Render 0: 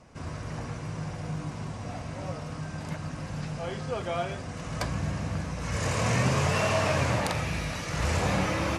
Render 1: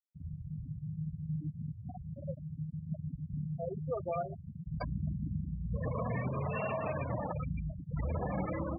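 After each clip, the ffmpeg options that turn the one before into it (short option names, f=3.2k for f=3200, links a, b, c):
-af "afftfilt=real='re*gte(hypot(re,im),0.0891)':imag='im*gte(hypot(re,im),0.0891)':win_size=1024:overlap=0.75,equalizer=f=100:w=7.3:g=-12.5,alimiter=level_in=0.5dB:limit=-24dB:level=0:latency=1:release=414,volume=-0.5dB,volume=-1dB"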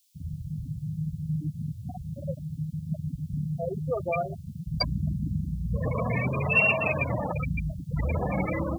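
-af "highshelf=f=3k:g=-7.5,aexciter=amount=11.3:drive=9.1:freq=2.6k,volume=7dB"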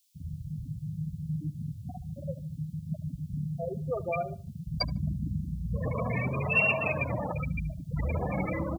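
-filter_complex "[0:a]asplit=2[a][b];[b]adelay=74,lowpass=f=2k:p=1,volume=-17dB,asplit=2[c][d];[d]adelay=74,lowpass=f=2k:p=1,volume=0.29,asplit=2[e][f];[f]adelay=74,lowpass=f=2k:p=1,volume=0.29[g];[a][c][e][g]amix=inputs=4:normalize=0,volume=-3dB"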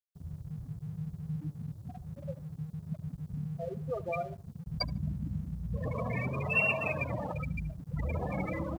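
-af "aeval=exprs='sgn(val(0))*max(abs(val(0))-0.00178,0)':c=same,volume=-3dB"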